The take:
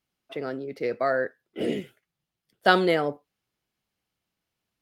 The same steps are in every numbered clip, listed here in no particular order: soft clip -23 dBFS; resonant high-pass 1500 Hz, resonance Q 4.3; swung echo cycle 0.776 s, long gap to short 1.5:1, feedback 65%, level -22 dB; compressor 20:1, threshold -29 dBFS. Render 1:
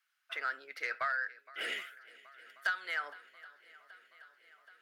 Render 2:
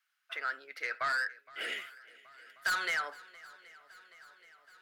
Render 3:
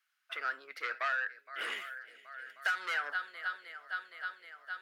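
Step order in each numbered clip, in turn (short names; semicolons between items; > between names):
resonant high-pass > compressor > swung echo > soft clip; resonant high-pass > soft clip > compressor > swung echo; swung echo > soft clip > resonant high-pass > compressor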